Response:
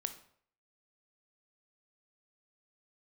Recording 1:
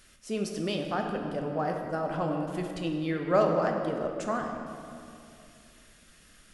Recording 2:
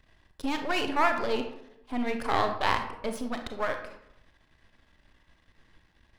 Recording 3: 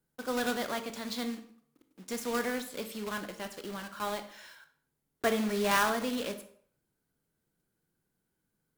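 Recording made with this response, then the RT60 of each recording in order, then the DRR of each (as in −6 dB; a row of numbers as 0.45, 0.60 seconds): 3; 2.6, 0.80, 0.60 seconds; 2.0, 5.5, 8.5 decibels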